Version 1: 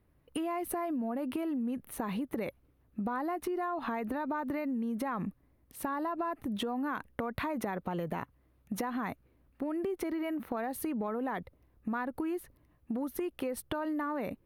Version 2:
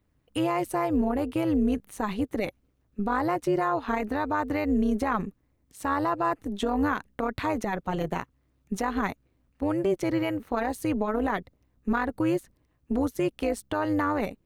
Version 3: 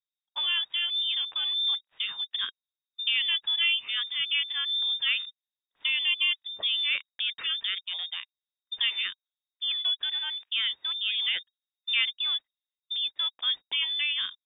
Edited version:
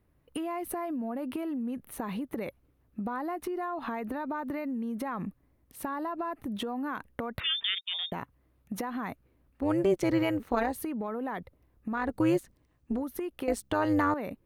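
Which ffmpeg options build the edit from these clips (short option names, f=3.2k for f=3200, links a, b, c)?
-filter_complex "[1:a]asplit=3[a][b][c];[0:a]asplit=5[d][e][f][g][h];[d]atrim=end=7.402[i];[2:a]atrim=start=7.398:end=8.122[j];[e]atrim=start=8.118:end=9.71[k];[a]atrim=start=9.55:end=10.79[l];[f]atrim=start=10.63:end=12.15[m];[b]atrim=start=11.91:end=13.04[n];[g]atrim=start=12.8:end=13.482[o];[c]atrim=start=13.478:end=14.142[p];[h]atrim=start=14.138[q];[i][j]acrossfade=d=0.004:c1=hsin:c2=hsin[r];[r][k]acrossfade=d=0.004:c1=hsin:c2=hsin[s];[s][l]acrossfade=d=0.16:c1=tri:c2=tri[t];[t][m]acrossfade=d=0.16:c1=tri:c2=tri[u];[u][n]acrossfade=d=0.24:c1=tri:c2=tri[v];[v][o]acrossfade=d=0.24:c1=tri:c2=tri[w];[w][p]acrossfade=d=0.004:c1=hsin:c2=hsin[x];[x][q]acrossfade=d=0.004:c1=hsin:c2=hsin"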